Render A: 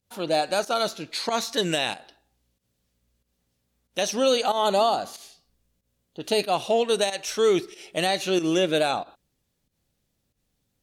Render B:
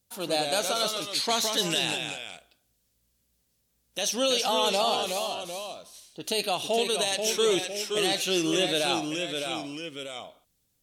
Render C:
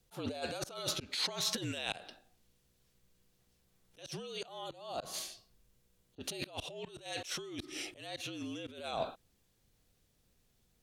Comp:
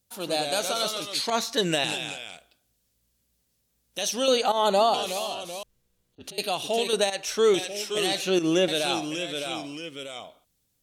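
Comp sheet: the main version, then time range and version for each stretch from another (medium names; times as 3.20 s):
B
1.30–1.84 s: from A
4.28–4.94 s: from A
5.63–6.38 s: from C
6.93–7.54 s: from A
8.21–8.68 s: from A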